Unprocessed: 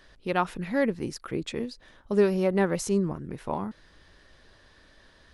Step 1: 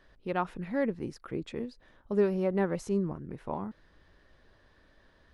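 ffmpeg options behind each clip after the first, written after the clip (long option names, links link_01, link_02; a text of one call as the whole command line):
ffmpeg -i in.wav -af "highshelf=frequency=3000:gain=-11.5,volume=-4dB" out.wav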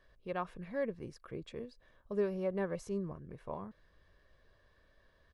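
ffmpeg -i in.wav -af "aecho=1:1:1.8:0.41,volume=-7dB" out.wav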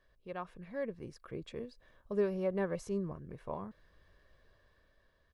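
ffmpeg -i in.wav -af "dynaudnorm=framelen=290:gausssize=7:maxgain=6dB,volume=-4.5dB" out.wav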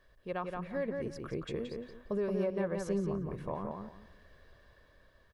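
ffmpeg -i in.wav -filter_complex "[0:a]alimiter=level_in=7dB:limit=-24dB:level=0:latency=1:release=272,volume=-7dB,asplit=2[link_01][link_02];[link_02]adelay=174,lowpass=frequency=3300:poles=1,volume=-3.5dB,asplit=2[link_03][link_04];[link_04]adelay=174,lowpass=frequency=3300:poles=1,volume=0.25,asplit=2[link_05][link_06];[link_06]adelay=174,lowpass=frequency=3300:poles=1,volume=0.25,asplit=2[link_07][link_08];[link_08]adelay=174,lowpass=frequency=3300:poles=1,volume=0.25[link_09];[link_03][link_05][link_07][link_09]amix=inputs=4:normalize=0[link_10];[link_01][link_10]amix=inputs=2:normalize=0,volume=5.5dB" out.wav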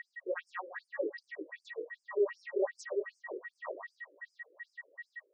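ffmpeg -i in.wav -af "flanger=delay=17.5:depth=6.8:speed=2.9,aeval=exprs='val(0)+0.00447*sin(2*PI*1900*n/s)':channel_layout=same,afftfilt=real='re*between(b*sr/1024,390*pow(6800/390,0.5+0.5*sin(2*PI*2.6*pts/sr))/1.41,390*pow(6800/390,0.5+0.5*sin(2*PI*2.6*pts/sr))*1.41)':imag='im*between(b*sr/1024,390*pow(6800/390,0.5+0.5*sin(2*PI*2.6*pts/sr))/1.41,390*pow(6800/390,0.5+0.5*sin(2*PI*2.6*pts/sr))*1.41)':win_size=1024:overlap=0.75,volume=8dB" out.wav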